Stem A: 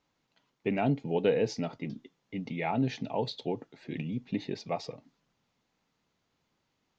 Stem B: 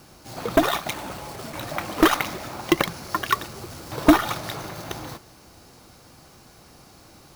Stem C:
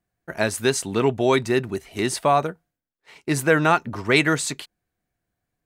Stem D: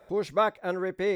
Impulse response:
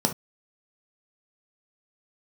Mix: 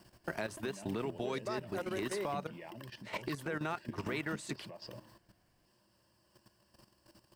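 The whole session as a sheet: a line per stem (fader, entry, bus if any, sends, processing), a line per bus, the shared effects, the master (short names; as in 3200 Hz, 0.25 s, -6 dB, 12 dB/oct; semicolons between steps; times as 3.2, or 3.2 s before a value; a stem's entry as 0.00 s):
+3.0 dB, 0.00 s, bus B, no send, compressor 12:1, threshold -36 dBFS, peak gain reduction 16 dB
-12.0 dB, 0.00 s, bus B, no send, HPF 50 Hz 6 dB/oct; auto duck -7 dB, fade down 0.35 s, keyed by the third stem
-4.5 dB, 0.00 s, bus A, no send, high shelf 4900 Hz -3.5 dB; three-band squash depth 70%
-0.5 dB, 1.10 s, bus A, no send, notches 60/120/180/240/300/360 Hz
bus A: 0.0 dB, compressor 3:1, threshold -33 dBFS, peak gain reduction 12 dB
bus B: 0.0 dB, ripple EQ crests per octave 1.3, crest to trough 12 dB; compressor 3:1, threshold -40 dBFS, peak gain reduction 11.5 dB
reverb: off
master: level quantiser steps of 12 dB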